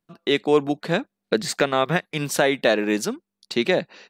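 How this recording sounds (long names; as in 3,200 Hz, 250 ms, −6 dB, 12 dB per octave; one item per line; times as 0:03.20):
background noise floor −84 dBFS
spectral slope −4.0 dB per octave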